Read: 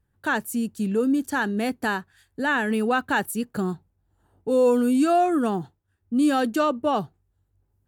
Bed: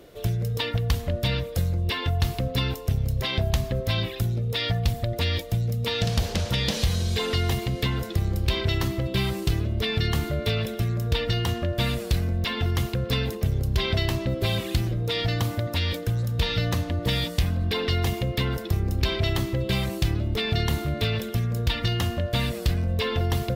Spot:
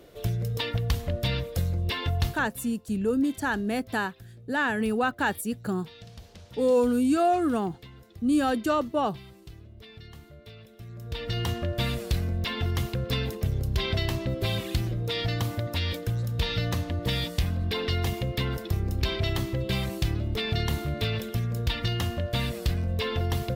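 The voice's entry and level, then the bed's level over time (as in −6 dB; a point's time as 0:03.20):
2.10 s, −3.0 dB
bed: 0:02.27 −2.5 dB
0:02.54 −22 dB
0:10.69 −22 dB
0:11.41 −3 dB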